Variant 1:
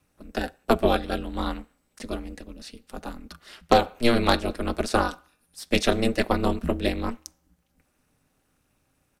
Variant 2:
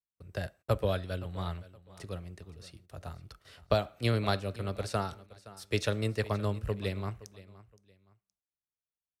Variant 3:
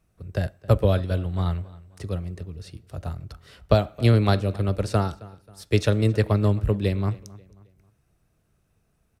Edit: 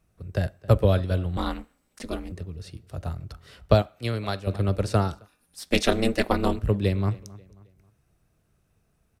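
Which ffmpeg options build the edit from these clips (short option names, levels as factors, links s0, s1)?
-filter_complex "[0:a]asplit=2[s0][s1];[2:a]asplit=4[s2][s3][s4][s5];[s2]atrim=end=1.372[s6];[s0]atrim=start=1.368:end=2.322[s7];[s3]atrim=start=2.318:end=3.822[s8];[1:a]atrim=start=3.818:end=4.472[s9];[s4]atrim=start=4.468:end=5.28[s10];[s1]atrim=start=5.12:end=6.7[s11];[s5]atrim=start=6.54[s12];[s6][s7]acrossfade=d=0.004:c1=hsin:c2=hsin[s13];[s13][s8]acrossfade=d=0.004:c1=hsin:c2=hsin[s14];[s14][s9]acrossfade=d=0.004:c1=hsin:c2=hsin[s15];[s15][s10]acrossfade=d=0.004:c1=hsin:c2=hsin[s16];[s16][s11]acrossfade=d=0.16:c1=tri:c2=tri[s17];[s17][s12]acrossfade=d=0.16:c1=tri:c2=tri"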